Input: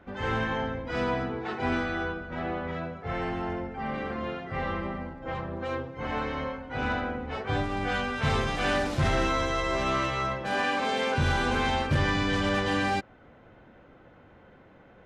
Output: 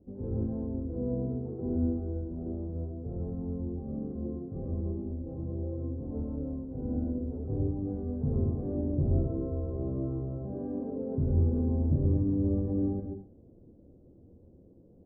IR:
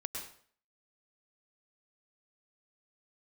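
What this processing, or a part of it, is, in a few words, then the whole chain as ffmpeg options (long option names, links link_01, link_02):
next room: -filter_complex "[0:a]lowpass=frequency=430:width=0.5412,lowpass=frequency=430:width=1.3066[link_01];[1:a]atrim=start_sample=2205[link_02];[link_01][link_02]afir=irnorm=-1:irlink=0"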